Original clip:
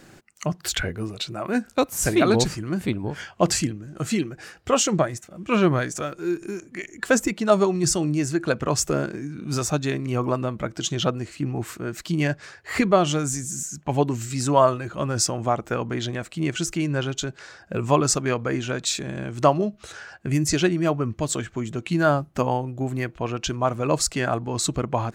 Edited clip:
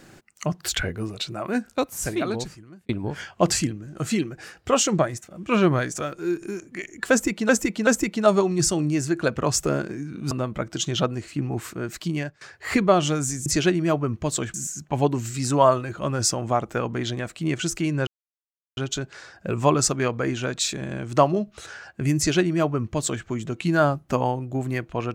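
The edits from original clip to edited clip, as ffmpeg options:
-filter_complex "[0:a]asplit=9[a][b][c][d][e][f][g][h][i];[a]atrim=end=2.89,asetpts=PTS-STARTPTS,afade=t=out:st=1.33:d=1.56[j];[b]atrim=start=2.89:end=7.492,asetpts=PTS-STARTPTS,afade=t=in:d=0.004:c=hsin[k];[c]atrim=start=7.108:end=7.492[l];[d]atrim=start=7.108:end=9.552[m];[e]atrim=start=10.348:end=12.45,asetpts=PTS-STARTPTS,afade=t=out:st=1.682:d=0.42:silence=0.0749894[n];[f]atrim=start=12.45:end=13.502,asetpts=PTS-STARTPTS,afade=t=in:d=0.004:c=hsin:silence=0.0749894[o];[g]atrim=start=20.428:end=21.512[p];[h]atrim=start=13.498:end=17.03,asetpts=PTS-STARTPTS,afade=t=out:st=3.528:d=0.004:c=hsin,apad=pad_dur=0.7[q];[i]atrim=start=17.03,asetpts=PTS-STARTPTS,afade=t=in:d=0.004:c=hsin[r];[j][k]concat=n=2:v=0:a=1[s];[s][l]acrossfade=d=0.004:c1=hsin:c2=hsin[t];[t][m]acrossfade=d=0.004:c1=hsin:c2=hsin[u];[n][o]concat=n=2:v=0:a=1[v];[u][v]acrossfade=d=0.004:c1=hsin:c2=hsin[w];[w][p]acrossfade=d=0.004:c1=hsin:c2=hsin[x];[q][r]concat=n=2:v=0:a=1[y];[x][y]acrossfade=d=0.004:c1=hsin:c2=hsin"

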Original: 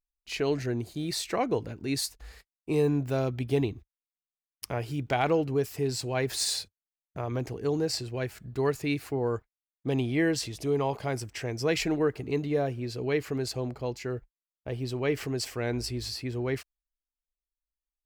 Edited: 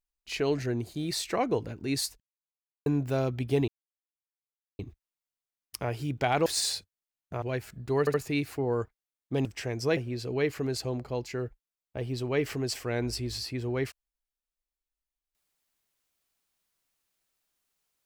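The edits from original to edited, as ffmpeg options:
-filter_complex "[0:a]asplit=10[a][b][c][d][e][f][g][h][i][j];[a]atrim=end=2.2,asetpts=PTS-STARTPTS,afade=t=out:st=2.196:d=0.004:c=hsin[k];[b]atrim=start=2.2:end=2.86,asetpts=PTS-STARTPTS,volume=0[l];[c]atrim=start=2.86:end=3.68,asetpts=PTS-STARTPTS,afade=t=in:d=0.004:c=hsin,afade=t=out:st=0.816:d=0.004:c=hsin,apad=pad_dur=1.11[m];[d]atrim=start=3.68:end=5.352,asetpts=PTS-STARTPTS,afade=t=in:d=0.004:c=hsin[n];[e]atrim=start=6.298:end=7.262[o];[f]atrim=start=8.098:end=8.752[p];[g]atrim=start=8.678:end=8.752[q];[h]atrim=start=8.678:end=9.992[r];[i]atrim=start=11.228:end=11.752[s];[j]atrim=start=12.678[t];[k][l][m][n]concat=n=4:v=0:a=1[u];[u][o]acrossfade=d=0.004:c1=hsin:c2=hsin[v];[v][p]acrossfade=d=0.004:c1=hsin:c2=hsin[w];[w][q]acrossfade=d=0.004:c1=hsin:c2=hsin[x];[x][r]acrossfade=d=0.004:c1=hsin:c2=hsin[y];[y][s]acrossfade=d=0.004:c1=hsin:c2=hsin[z];[z][t]acrossfade=d=0.004:c1=hsin:c2=hsin"

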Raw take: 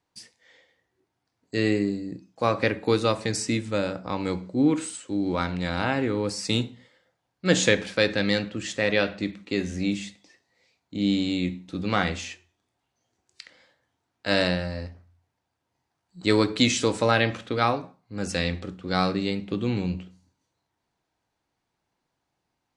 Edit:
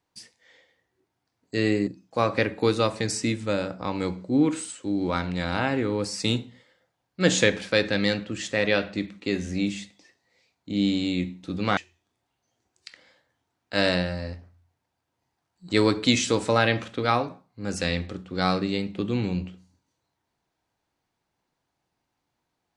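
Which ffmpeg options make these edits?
-filter_complex "[0:a]asplit=3[a][b][c];[a]atrim=end=1.872[d];[b]atrim=start=2.118:end=12.022[e];[c]atrim=start=12.298[f];[d][e]acrossfade=d=0.004:c1=hsin:c2=hsin[g];[g][f]acrossfade=d=0.004:c1=hsin:c2=hsin"

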